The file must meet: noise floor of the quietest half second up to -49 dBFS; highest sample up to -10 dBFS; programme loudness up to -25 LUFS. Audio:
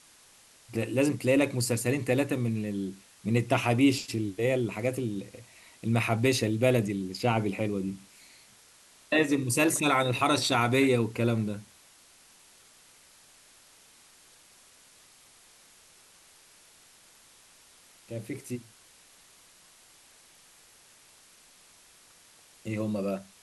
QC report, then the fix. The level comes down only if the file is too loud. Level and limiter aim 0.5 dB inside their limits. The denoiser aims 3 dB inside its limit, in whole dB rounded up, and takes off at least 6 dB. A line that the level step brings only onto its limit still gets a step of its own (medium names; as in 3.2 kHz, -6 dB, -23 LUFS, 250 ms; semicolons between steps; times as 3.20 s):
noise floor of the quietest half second -58 dBFS: pass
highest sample -10.5 dBFS: pass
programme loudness -28.0 LUFS: pass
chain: none needed